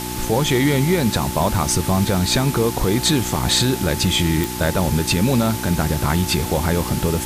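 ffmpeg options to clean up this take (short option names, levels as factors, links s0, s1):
-af "adeclick=t=4,bandreject=f=61.1:t=h:w=4,bandreject=f=122.2:t=h:w=4,bandreject=f=183.3:t=h:w=4,bandreject=f=244.4:t=h:w=4,bandreject=f=305.5:t=h:w=4,bandreject=f=366.6:t=h:w=4,bandreject=f=870:w=30,afwtdn=0.032"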